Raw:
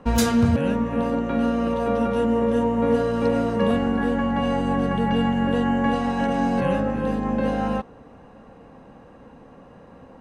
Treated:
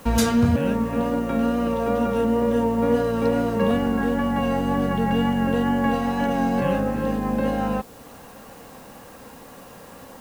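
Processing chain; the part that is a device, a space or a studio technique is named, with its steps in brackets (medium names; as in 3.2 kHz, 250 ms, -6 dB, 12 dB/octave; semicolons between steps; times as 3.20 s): noise-reduction cassette on a plain deck (tape noise reduction on one side only encoder only; wow and flutter 25 cents; white noise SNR 29 dB)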